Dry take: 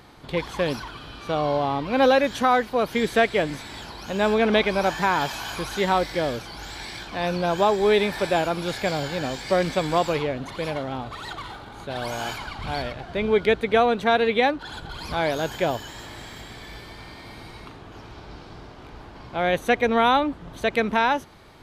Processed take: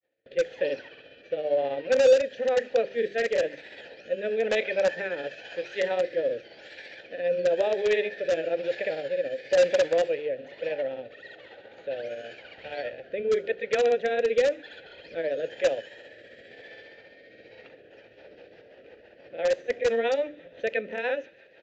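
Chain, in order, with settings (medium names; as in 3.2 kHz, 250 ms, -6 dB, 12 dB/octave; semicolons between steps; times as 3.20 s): hum notches 50/100/150/200/250/300/350/400 Hz; granulator 121 ms, grains 15 per s, spray 34 ms, pitch spread up and down by 0 st; vowel filter e; feedback echo behind a high-pass 146 ms, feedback 69%, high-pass 1.9 kHz, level -22.5 dB; in parallel at -8 dB: integer overflow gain 23.5 dB; on the sum: rotary cabinet horn 1 Hz, later 6 Hz, at 17.45 s; gate with hold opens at -55 dBFS; on a send at -19 dB: reverberation RT60 0.50 s, pre-delay 5 ms; on the sum: resampled via 16 kHz; trim +7 dB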